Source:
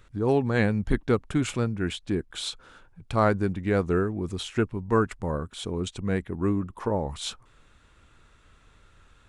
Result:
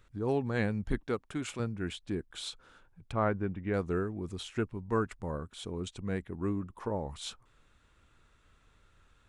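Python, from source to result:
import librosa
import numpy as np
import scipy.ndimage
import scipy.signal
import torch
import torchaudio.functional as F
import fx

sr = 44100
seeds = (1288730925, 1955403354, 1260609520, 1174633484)

y = fx.low_shelf(x, sr, hz=190.0, db=-10.0, at=(1.04, 1.6))
y = fx.savgol(y, sr, points=25, at=(3.12, 3.74))
y = F.gain(torch.from_numpy(y), -7.5).numpy()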